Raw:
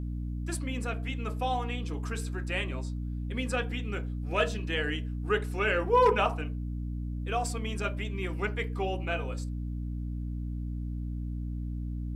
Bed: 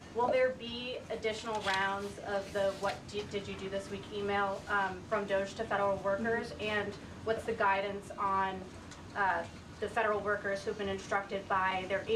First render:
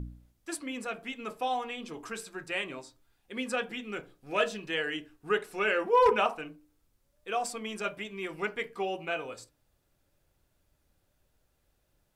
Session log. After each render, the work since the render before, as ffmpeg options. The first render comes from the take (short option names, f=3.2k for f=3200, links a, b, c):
-af "bandreject=f=60:t=h:w=4,bandreject=f=120:t=h:w=4,bandreject=f=180:t=h:w=4,bandreject=f=240:t=h:w=4,bandreject=f=300:t=h:w=4"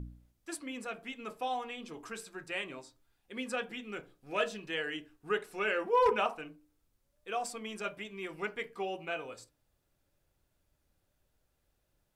-af "volume=-4dB"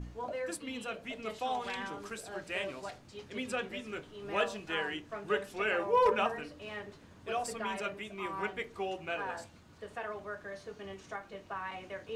-filter_complex "[1:a]volume=-9dB[a];[0:a][a]amix=inputs=2:normalize=0"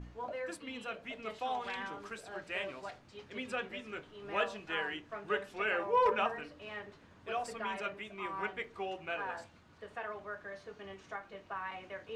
-af "lowpass=f=1.6k:p=1,tiltshelf=f=900:g=-5"